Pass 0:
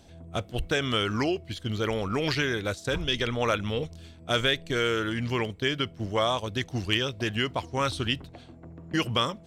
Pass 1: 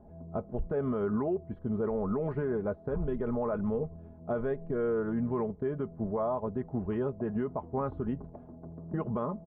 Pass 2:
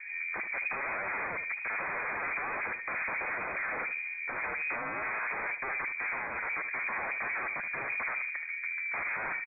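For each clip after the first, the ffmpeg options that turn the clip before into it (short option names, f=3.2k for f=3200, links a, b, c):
-af "lowpass=f=1k:w=0.5412,lowpass=f=1k:w=1.3066,aecho=1:1:4.8:0.57,alimiter=limit=-23dB:level=0:latency=1:release=92"
-af "aeval=exprs='0.075*sin(PI/2*6.31*val(0)/0.075)':c=same,aecho=1:1:75|150|225:0.266|0.0559|0.0117,lowpass=f=2.1k:t=q:w=0.5098,lowpass=f=2.1k:t=q:w=0.6013,lowpass=f=2.1k:t=q:w=0.9,lowpass=f=2.1k:t=q:w=2.563,afreqshift=-2500,volume=-8.5dB"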